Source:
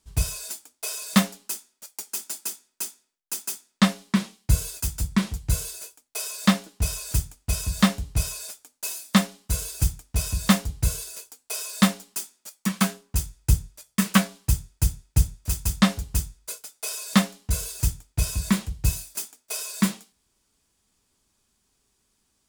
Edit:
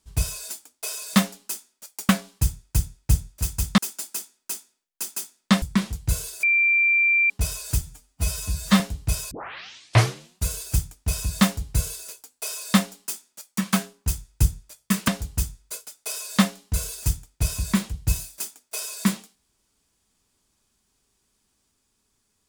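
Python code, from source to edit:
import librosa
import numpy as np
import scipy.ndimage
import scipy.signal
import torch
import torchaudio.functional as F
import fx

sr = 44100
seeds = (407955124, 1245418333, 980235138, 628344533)

y = fx.edit(x, sr, fx.cut(start_s=3.93, length_s=1.1),
    fx.bleep(start_s=5.84, length_s=0.87, hz=2360.0, db=-16.0),
    fx.stretch_span(start_s=7.22, length_s=0.66, factor=1.5),
    fx.tape_start(start_s=8.39, length_s=1.16),
    fx.move(start_s=14.16, length_s=1.69, to_s=2.09), tone=tone)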